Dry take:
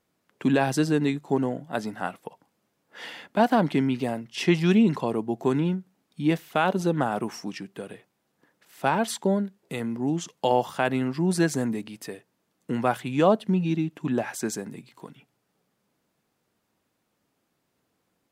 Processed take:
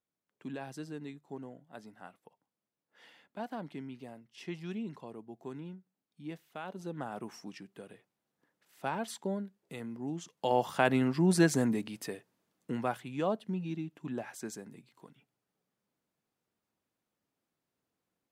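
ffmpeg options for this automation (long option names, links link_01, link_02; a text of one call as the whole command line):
ffmpeg -i in.wav -af "volume=-2dB,afade=type=in:start_time=6.69:duration=0.66:silence=0.398107,afade=type=in:start_time=10.36:duration=0.42:silence=0.334965,afade=type=out:start_time=11.99:duration=1.08:silence=0.316228" out.wav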